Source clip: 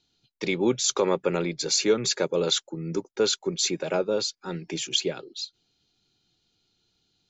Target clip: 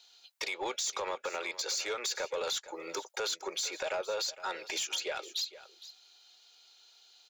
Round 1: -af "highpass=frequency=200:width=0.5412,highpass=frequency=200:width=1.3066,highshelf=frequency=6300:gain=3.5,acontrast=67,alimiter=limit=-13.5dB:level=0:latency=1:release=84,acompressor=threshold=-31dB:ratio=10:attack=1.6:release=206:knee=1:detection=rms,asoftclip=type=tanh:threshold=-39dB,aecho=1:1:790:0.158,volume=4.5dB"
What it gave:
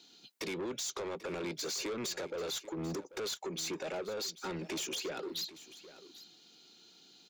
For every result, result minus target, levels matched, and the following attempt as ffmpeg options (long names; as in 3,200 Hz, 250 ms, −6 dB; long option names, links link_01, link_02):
echo 329 ms late; 250 Hz band +12.5 dB; soft clipping: distortion +8 dB
-af "highpass=frequency=200:width=0.5412,highpass=frequency=200:width=1.3066,highshelf=frequency=6300:gain=3.5,acontrast=67,alimiter=limit=-13.5dB:level=0:latency=1:release=84,acompressor=threshold=-31dB:ratio=10:attack=1.6:release=206:knee=1:detection=rms,asoftclip=type=tanh:threshold=-39dB,aecho=1:1:461:0.158,volume=4.5dB"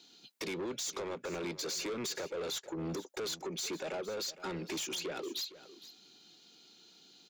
250 Hz band +12.5 dB; soft clipping: distortion +8 dB
-af "highpass=frequency=610:width=0.5412,highpass=frequency=610:width=1.3066,highshelf=frequency=6300:gain=3.5,acontrast=67,alimiter=limit=-13.5dB:level=0:latency=1:release=84,acompressor=threshold=-31dB:ratio=10:attack=1.6:release=206:knee=1:detection=rms,asoftclip=type=tanh:threshold=-39dB,aecho=1:1:461:0.158,volume=4.5dB"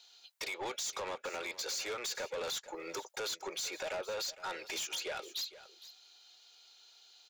soft clipping: distortion +8 dB
-af "highpass=frequency=610:width=0.5412,highpass=frequency=610:width=1.3066,highshelf=frequency=6300:gain=3.5,acontrast=67,alimiter=limit=-13.5dB:level=0:latency=1:release=84,acompressor=threshold=-31dB:ratio=10:attack=1.6:release=206:knee=1:detection=rms,asoftclip=type=tanh:threshold=-31dB,aecho=1:1:461:0.158,volume=4.5dB"